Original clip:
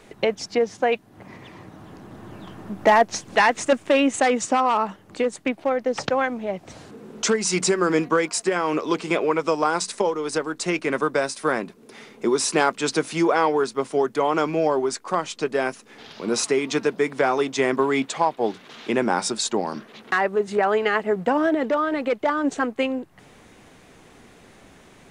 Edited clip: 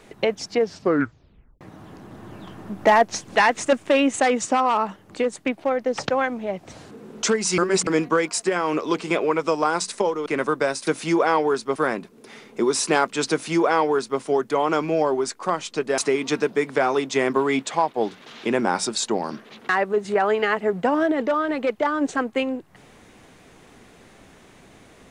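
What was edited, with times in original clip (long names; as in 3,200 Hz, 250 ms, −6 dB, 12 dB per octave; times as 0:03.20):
0:00.60: tape stop 1.01 s
0:07.58–0:07.87: reverse
0:10.26–0:10.80: remove
0:12.96–0:13.85: duplicate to 0:11.41
0:15.63–0:16.41: remove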